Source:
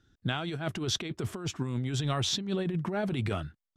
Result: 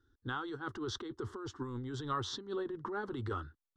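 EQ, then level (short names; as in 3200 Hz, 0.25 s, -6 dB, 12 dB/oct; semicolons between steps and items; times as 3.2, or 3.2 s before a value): dynamic EQ 1200 Hz, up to +5 dB, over -48 dBFS, Q 2; LPF 4000 Hz 12 dB/oct; fixed phaser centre 650 Hz, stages 6; -3.0 dB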